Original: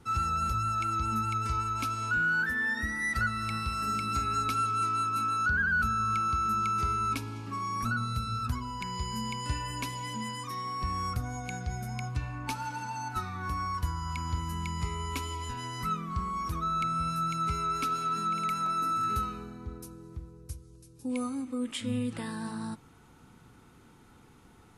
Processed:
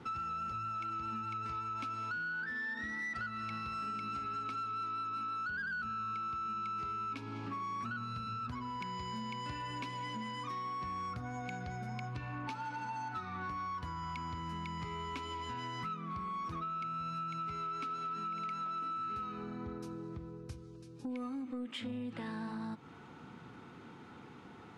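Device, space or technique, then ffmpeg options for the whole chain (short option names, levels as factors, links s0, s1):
AM radio: -af "highpass=140,lowpass=3600,acompressor=threshold=0.00708:ratio=6,asoftclip=type=tanh:threshold=0.0119,volume=2"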